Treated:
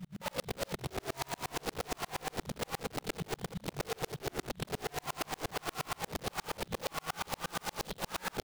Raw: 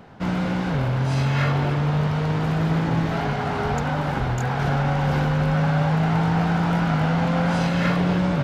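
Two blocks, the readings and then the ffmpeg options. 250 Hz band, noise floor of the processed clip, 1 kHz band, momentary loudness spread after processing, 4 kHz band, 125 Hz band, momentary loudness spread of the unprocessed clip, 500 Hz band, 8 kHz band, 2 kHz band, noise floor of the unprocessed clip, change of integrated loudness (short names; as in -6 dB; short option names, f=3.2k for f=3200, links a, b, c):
-22.5 dB, -64 dBFS, -14.5 dB, 2 LU, -6.5 dB, -25.5 dB, 4 LU, -12.5 dB, n/a, -14.0 dB, -25 dBFS, -17.0 dB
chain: -filter_complex "[0:a]afftfilt=real='re*(1-between(b*sr/4096,210,2900))':imag='im*(1-between(b*sr/4096,210,2900))':win_size=4096:overlap=0.75,flanger=delay=4.2:depth=6.7:regen=-3:speed=0.54:shape=triangular,lowpass=f=3.8k:t=q:w=4.7,lowshelf=f=290:t=q:w=3:g=10.5,asplit=2[a][b];[b]asplit=5[c][d][e][f][g];[c]adelay=177,afreqshift=-61,volume=-18dB[h];[d]adelay=354,afreqshift=-122,volume=-22.4dB[i];[e]adelay=531,afreqshift=-183,volume=-26.9dB[j];[f]adelay=708,afreqshift=-244,volume=-31.3dB[k];[g]adelay=885,afreqshift=-305,volume=-35.7dB[l];[h][i][j][k][l]amix=inputs=5:normalize=0[m];[a][m]amix=inputs=2:normalize=0,adynamicsmooth=sensitivity=4:basefreq=3k,acrossover=split=2100[n][o];[n]acrusher=bits=3:mode=log:mix=0:aa=0.000001[p];[p][o]amix=inputs=2:normalize=0,highpass=f=45:p=1,aeval=exprs='(mod(4.47*val(0)+1,2)-1)/4.47':c=same,acompressor=threshold=-33dB:ratio=3,aeval=exprs='val(0)*pow(10,-39*if(lt(mod(-8.5*n/s,1),2*abs(-8.5)/1000),1-mod(-8.5*n/s,1)/(2*abs(-8.5)/1000),(mod(-8.5*n/s,1)-2*abs(-8.5)/1000)/(1-2*abs(-8.5)/1000))/20)':c=same"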